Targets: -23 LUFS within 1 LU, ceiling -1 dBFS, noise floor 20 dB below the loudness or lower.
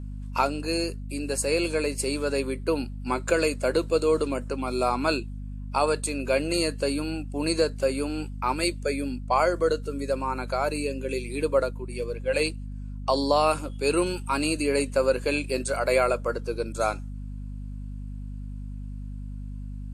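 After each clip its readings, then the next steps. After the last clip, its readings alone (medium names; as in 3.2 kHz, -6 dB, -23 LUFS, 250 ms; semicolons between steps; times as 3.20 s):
hum 50 Hz; highest harmonic 250 Hz; hum level -33 dBFS; loudness -26.5 LUFS; peak level -8.5 dBFS; loudness target -23.0 LUFS
-> hum notches 50/100/150/200/250 Hz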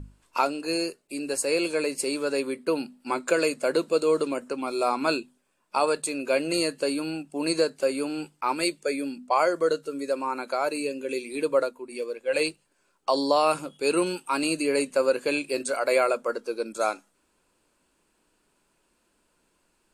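hum not found; loudness -27.0 LUFS; peak level -8.0 dBFS; loudness target -23.0 LUFS
-> trim +4 dB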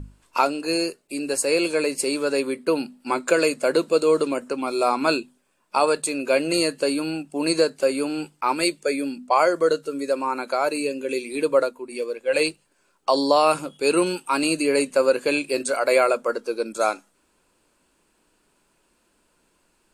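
loudness -23.0 LUFS; peak level -4.0 dBFS; noise floor -67 dBFS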